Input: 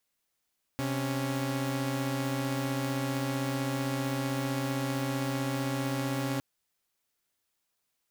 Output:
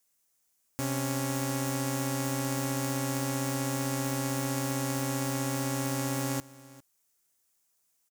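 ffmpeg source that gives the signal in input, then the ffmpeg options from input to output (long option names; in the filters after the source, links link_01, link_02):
-f lavfi -i "aevalsrc='0.0335*((2*mod(130.81*t,1)-1)+(2*mod(277.18*t,1)-1))':duration=5.61:sample_rate=44100"
-af "highshelf=frequency=5100:width_type=q:width=1.5:gain=7,aecho=1:1:403:0.0944"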